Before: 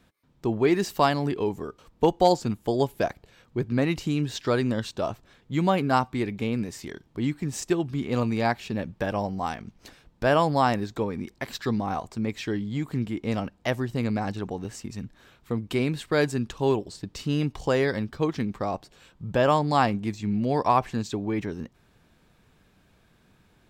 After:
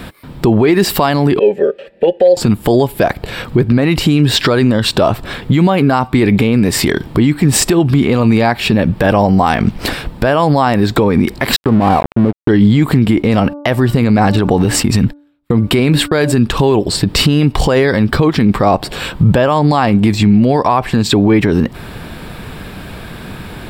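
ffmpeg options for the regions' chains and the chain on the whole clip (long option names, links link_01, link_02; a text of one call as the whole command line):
ffmpeg -i in.wav -filter_complex "[0:a]asettb=1/sr,asplit=3[link_01][link_02][link_03];[link_01]atrim=end=1.394[link_04];[link_02]atrim=start=1.39:end=2.37,asetpts=PTS-STARTPTS,afade=type=in:duration=0.004:curve=qsin,afade=type=out:start_time=0.976:duration=0.004:curve=qsin,asplit=3[link_05][link_06][link_07];[link_05]bandpass=frequency=530:width_type=q:width=8,volume=0dB[link_08];[link_06]bandpass=frequency=1840:width_type=q:width=8,volume=-6dB[link_09];[link_07]bandpass=frequency=2480:width_type=q:width=8,volume=-9dB[link_10];[link_08][link_09][link_10]amix=inputs=3:normalize=0,aecho=1:1:5.1:0.6,atrim=end_sample=43218[link_11];[link_03]atrim=start=2.366[link_12];[link_04][link_11]acrossfade=duration=0.004:curve1=hsin:curve2=qsin[link_13];[link_13][link_12]acrossfade=duration=0.004:curve1=qsin:curve2=hsin,asettb=1/sr,asplit=3[link_14][link_15][link_16];[link_14]atrim=end=11.564[link_17];[link_15]atrim=start=11.56:end=12.49,asetpts=PTS-STARTPTS,afade=type=in:duration=0.004:curve=qsin,afade=type=out:start_time=0.926:duration=0.004:curve=qsin,acrusher=bits=5:mode=log:mix=0:aa=0.000001,lowpass=frequency=1200:width=0.5412,lowpass=frequency=1200:width=1.3066,aeval=exprs='sgn(val(0))*max(abs(val(0))-0.00944,0)':channel_layout=same[link_18];[link_16]atrim=start=12.486[link_19];[link_17][link_18]acrossfade=duration=0.004:curve1=hsin:curve2=qsin[link_20];[link_20][link_19]acrossfade=duration=0.004:curve1=qsin:curve2=hsin,asettb=1/sr,asplit=3[link_21][link_22][link_23];[link_21]atrim=end=13.174[link_24];[link_22]atrim=start=13.17:end=16.32,asetpts=PTS-STARTPTS,afade=type=in:duration=0.004:curve=qsin,afade=type=out:start_time=3.146:duration=0.004:curve=qsin,agate=range=-46dB:threshold=-49dB:ratio=16:release=100:detection=peak,bandreject=frequency=290.2:width_type=h:width=4,bandreject=frequency=580.4:width_type=h:width=4,bandreject=frequency=870.6:width_type=h:width=4,bandreject=frequency=1160.8:width_type=h:width=4,bandreject=frequency=1451:width_type=h:width=4[link_25];[link_23]atrim=start=16.316[link_26];[link_24][link_25]acrossfade=duration=0.004:curve1=hsin:curve2=qsin[link_27];[link_27][link_26]acrossfade=duration=0.004:curve1=qsin:curve2=hsin,equalizer=frequency=6300:width_type=o:width=0.33:gain=-13,acompressor=threshold=-34dB:ratio=12,alimiter=level_in=33.5dB:limit=-1dB:release=50:level=0:latency=1,volume=-1dB" out.wav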